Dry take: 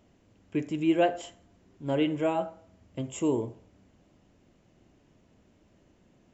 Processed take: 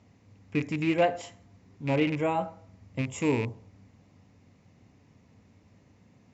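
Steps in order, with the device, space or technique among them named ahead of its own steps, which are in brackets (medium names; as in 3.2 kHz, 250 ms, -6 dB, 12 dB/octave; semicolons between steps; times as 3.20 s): car door speaker with a rattle (rattle on loud lows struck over -33 dBFS, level -28 dBFS; cabinet simulation 82–6600 Hz, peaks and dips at 97 Hz +9 dB, 350 Hz -10 dB, 620 Hz -7 dB, 1.5 kHz -6 dB, 2.1 kHz +3 dB, 3.1 kHz -8 dB); trim +4.5 dB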